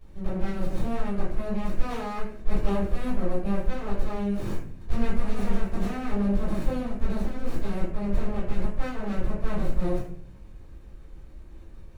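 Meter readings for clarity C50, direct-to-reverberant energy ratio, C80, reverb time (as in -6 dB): 2.0 dB, -10.5 dB, 6.5 dB, 0.55 s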